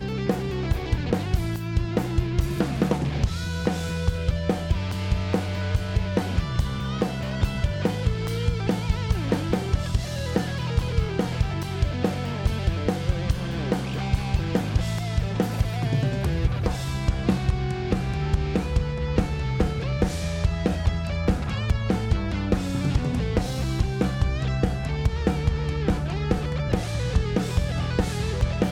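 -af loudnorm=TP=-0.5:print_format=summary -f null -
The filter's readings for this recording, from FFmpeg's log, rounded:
Input Integrated:    -26.0 LUFS
Input True Peak:      -8.7 dBTP
Input LRA:             0.7 LU
Input Threshold:     -36.0 LUFS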